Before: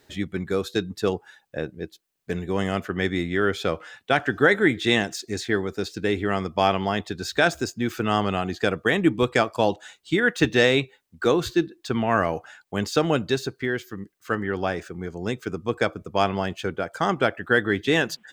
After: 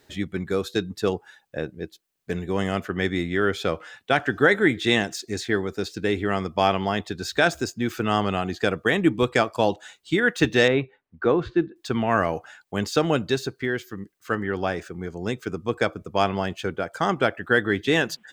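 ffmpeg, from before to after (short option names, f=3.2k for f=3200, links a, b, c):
-filter_complex "[0:a]asettb=1/sr,asplit=3[a][b][c];[a]atrim=end=10.684[d];[b]atrim=start=10.68:end=11.76,asetpts=PTS-STARTPTS,afade=t=in:d=0.004:c=qsin,afade=t=out:st=1.076:d=0.004:c=qsin,lowpass=1.9k[e];[c]atrim=start=11.756[f];[d][e]acrossfade=d=0.004:c1=hsin:c2=qsin[g];[g][f]acrossfade=d=0.004:c1=qsin:c2=hsin"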